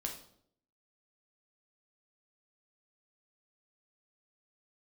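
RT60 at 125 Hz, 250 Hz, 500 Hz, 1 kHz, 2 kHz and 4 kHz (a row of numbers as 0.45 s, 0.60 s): 0.75 s, 0.80 s, 0.75 s, 0.60 s, 0.50 s, 0.50 s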